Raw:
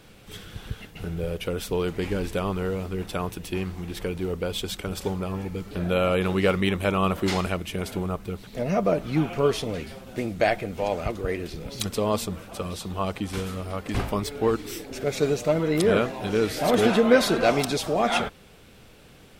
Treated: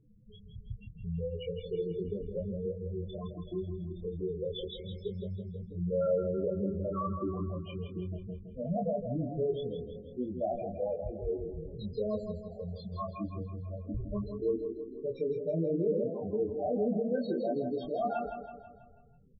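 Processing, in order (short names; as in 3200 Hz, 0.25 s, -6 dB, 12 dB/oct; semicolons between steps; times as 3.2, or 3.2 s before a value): loudest bins only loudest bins 4; limiter -20 dBFS, peak gain reduction 11 dB; treble ducked by the level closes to 2000 Hz, closed at -24 dBFS; doubler 24 ms -4.5 dB; feedback echo 0.163 s, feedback 51%, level -7.5 dB; gain -6 dB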